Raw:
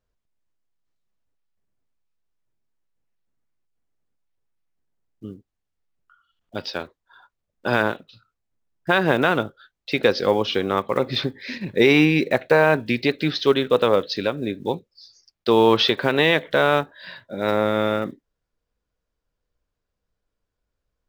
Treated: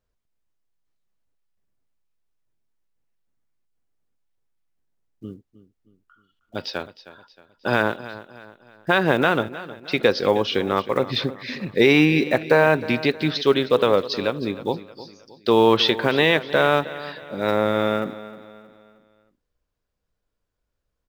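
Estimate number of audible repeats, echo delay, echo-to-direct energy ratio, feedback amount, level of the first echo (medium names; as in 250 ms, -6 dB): 3, 313 ms, -15.0 dB, 42%, -16.0 dB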